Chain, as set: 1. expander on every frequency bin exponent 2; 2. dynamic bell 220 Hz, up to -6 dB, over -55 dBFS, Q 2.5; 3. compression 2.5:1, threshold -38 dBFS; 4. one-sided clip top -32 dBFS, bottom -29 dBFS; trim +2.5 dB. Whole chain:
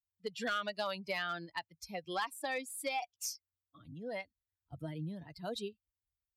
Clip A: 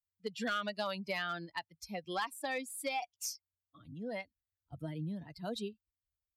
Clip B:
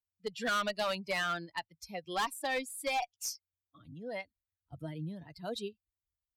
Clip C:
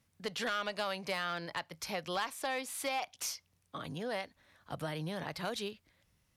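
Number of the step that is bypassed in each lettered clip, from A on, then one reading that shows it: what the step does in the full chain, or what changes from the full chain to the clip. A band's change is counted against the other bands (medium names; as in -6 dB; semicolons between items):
2, momentary loudness spread change -1 LU; 3, loudness change +3.5 LU; 1, momentary loudness spread change -1 LU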